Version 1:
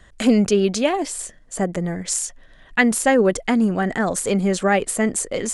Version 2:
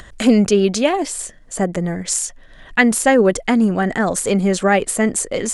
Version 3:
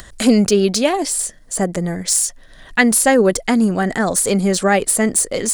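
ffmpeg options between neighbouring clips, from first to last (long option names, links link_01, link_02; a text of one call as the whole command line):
ffmpeg -i in.wav -af "acompressor=mode=upward:threshold=-35dB:ratio=2.5,volume=3dB" out.wav
ffmpeg -i in.wav -af "aexciter=amount=1.5:drive=8.5:freq=4000" out.wav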